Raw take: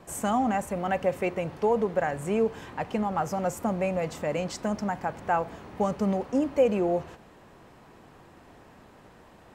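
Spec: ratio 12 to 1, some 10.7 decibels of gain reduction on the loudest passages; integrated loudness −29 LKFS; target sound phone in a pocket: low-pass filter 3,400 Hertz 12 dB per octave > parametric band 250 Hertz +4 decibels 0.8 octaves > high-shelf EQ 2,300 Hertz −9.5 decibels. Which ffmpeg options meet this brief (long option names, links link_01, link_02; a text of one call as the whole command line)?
ffmpeg -i in.wav -af "acompressor=threshold=-27dB:ratio=12,lowpass=3400,equalizer=frequency=250:width_type=o:width=0.8:gain=4,highshelf=frequency=2300:gain=-9.5,volume=3.5dB" out.wav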